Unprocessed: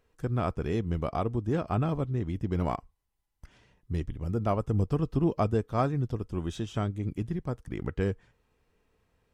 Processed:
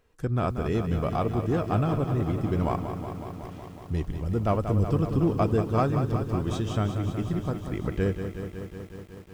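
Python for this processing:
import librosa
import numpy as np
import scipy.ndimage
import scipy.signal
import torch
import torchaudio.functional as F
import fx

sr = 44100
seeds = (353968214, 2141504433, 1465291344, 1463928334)

p1 = 10.0 ** (-25.5 / 20.0) * np.tanh(x / 10.0 ** (-25.5 / 20.0))
p2 = x + F.gain(torch.from_numpy(p1), -6.0).numpy()
y = fx.echo_crushed(p2, sr, ms=185, feedback_pct=80, bits=9, wet_db=-8.5)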